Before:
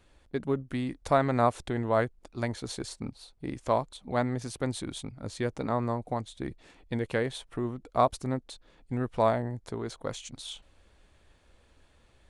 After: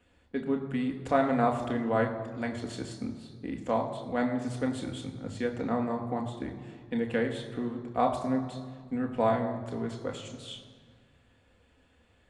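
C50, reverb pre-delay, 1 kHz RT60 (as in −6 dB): 9.0 dB, 3 ms, 1.6 s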